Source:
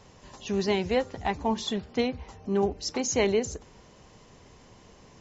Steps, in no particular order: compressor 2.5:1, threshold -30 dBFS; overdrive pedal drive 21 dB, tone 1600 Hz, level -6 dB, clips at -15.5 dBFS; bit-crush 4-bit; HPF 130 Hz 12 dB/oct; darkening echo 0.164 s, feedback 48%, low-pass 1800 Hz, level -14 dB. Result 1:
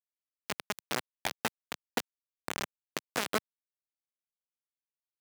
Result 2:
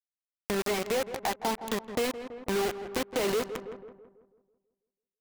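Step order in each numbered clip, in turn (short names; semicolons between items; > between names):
overdrive pedal > compressor > darkening echo > bit-crush > HPF; overdrive pedal > HPF > bit-crush > darkening echo > compressor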